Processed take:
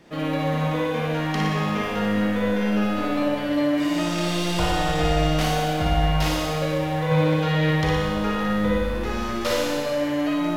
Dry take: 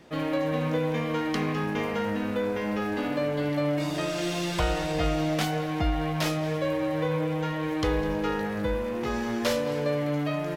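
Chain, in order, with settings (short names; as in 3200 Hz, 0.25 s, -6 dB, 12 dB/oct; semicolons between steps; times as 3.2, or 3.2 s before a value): 7.11–7.71 graphic EQ 125/500/2000/4000 Hz +10/+4/+4/+7 dB; flutter echo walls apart 10 m, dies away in 0.82 s; Schroeder reverb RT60 1.7 s, combs from 31 ms, DRR -0.5 dB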